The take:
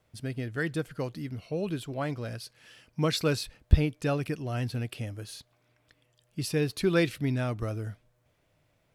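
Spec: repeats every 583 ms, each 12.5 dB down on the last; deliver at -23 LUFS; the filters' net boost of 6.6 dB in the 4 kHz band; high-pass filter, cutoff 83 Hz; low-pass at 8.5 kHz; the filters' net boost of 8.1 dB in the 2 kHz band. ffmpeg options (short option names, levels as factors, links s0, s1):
-af "highpass=83,lowpass=8500,equalizer=f=2000:t=o:g=9,equalizer=f=4000:t=o:g=5.5,aecho=1:1:583|1166|1749:0.237|0.0569|0.0137,volume=2"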